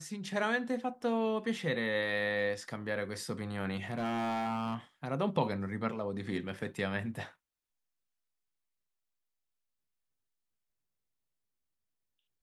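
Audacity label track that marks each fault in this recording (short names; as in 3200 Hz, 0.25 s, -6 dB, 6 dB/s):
3.900000	4.750000	clipped -30 dBFS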